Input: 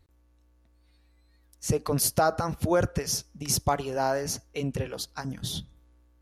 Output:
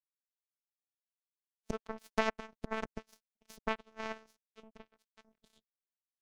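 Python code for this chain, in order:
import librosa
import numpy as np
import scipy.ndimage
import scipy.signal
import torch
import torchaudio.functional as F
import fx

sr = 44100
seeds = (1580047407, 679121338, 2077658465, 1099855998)

y = fx.robotise(x, sr, hz=221.0)
y = fx.spacing_loss(y, sr, db_at_10k=21)
y = fx.power_curve(y, sr, exponent=3.0)
y = y * librosa.db_to_amplitude(3.0)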